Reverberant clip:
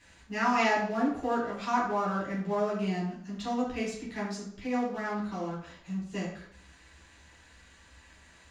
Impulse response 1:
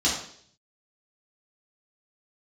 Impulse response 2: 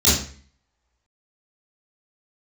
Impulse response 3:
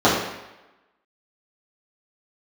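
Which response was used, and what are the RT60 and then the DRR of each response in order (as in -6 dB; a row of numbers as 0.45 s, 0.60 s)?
1; 0.60 s, 0.45 s, 1.0 s; -7.0 dB, -12.5 dB, -10.0 dB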